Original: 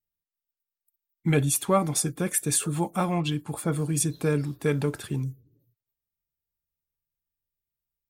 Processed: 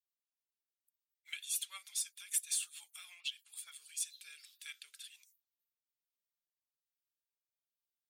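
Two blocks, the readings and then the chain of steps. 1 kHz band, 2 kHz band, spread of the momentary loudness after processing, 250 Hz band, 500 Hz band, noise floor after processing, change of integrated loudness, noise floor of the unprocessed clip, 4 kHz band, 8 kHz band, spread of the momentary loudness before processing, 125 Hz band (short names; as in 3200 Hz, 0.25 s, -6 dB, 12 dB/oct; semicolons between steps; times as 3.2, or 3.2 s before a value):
-32.0 dB, -13.5 dB, 16 LU, under -40 dB, under -40 dB, under -85 dBFS, -13.5 dB, under -85 dBFS, -5.5 dB, -9.5 dB, 8 LU, under -40 dB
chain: rotary speaker horn 6.7 Hz, later 1.2 Hz, at 3.56; ladder high-pass 2500 Hz, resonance 35%; in parallel at -6.5 dB: hard clip -35.5 dBFS, distortion -8 dB; on the sum: gain -1 dB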